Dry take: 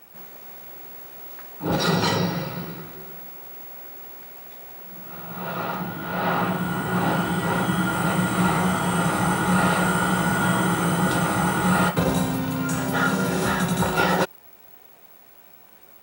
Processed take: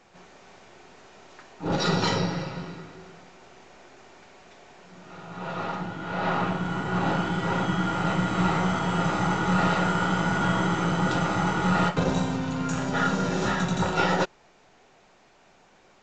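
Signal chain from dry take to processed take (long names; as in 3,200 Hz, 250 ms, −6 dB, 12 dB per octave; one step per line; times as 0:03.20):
gain on one half-wave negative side −3 dB
level −1.5 dB
A-law companding 128 kbit/s 16,000 Hz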